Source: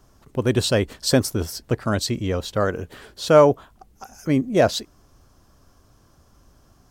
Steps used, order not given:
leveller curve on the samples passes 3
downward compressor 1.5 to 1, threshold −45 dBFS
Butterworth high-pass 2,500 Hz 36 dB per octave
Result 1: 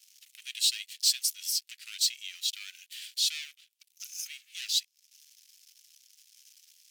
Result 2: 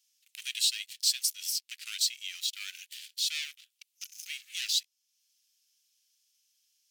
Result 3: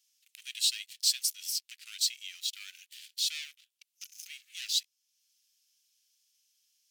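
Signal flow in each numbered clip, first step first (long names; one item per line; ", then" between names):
downward compressor, then leveller curve on the samples, then Butterworth high-pass
leveller curve on the samples, then Butterworth high-pass, then downward compressor
leveller curve on the samples, then downward compressor, then Butterworth high-pass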